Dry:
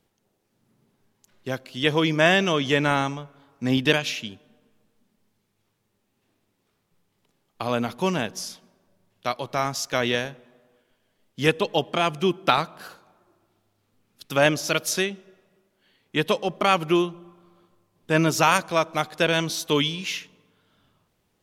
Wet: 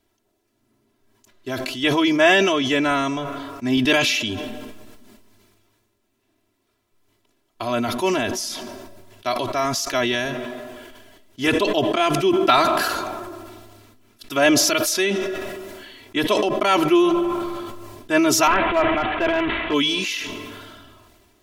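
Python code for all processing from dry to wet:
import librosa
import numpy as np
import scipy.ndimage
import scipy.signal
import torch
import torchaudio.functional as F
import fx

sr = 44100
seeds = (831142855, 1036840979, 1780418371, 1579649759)

y = fx.chain(x, sr, fx.delta_mod(bps=16000, step_db=-24.0),
    fx.clip_hard(threshold_db=-15.0), at=(18.47, 19.74))
y = y + 0.92 * np.pad(y, (int(3.0 * sr / 1000.0), 0))[:len(y)]
y = fx.sustainer(y, sr, db_per_s=27.0)
y = y * 10.0 ** (-1.0 / 20.0)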